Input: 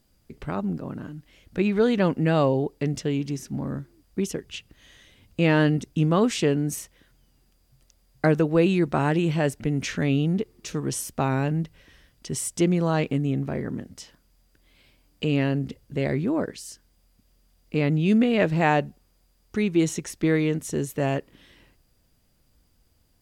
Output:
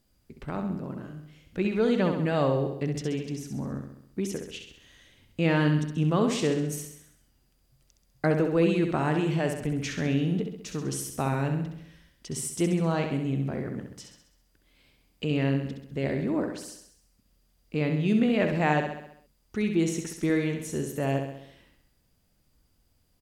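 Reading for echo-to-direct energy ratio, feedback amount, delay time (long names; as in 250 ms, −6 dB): −5.0 dB, 55%, 66 ms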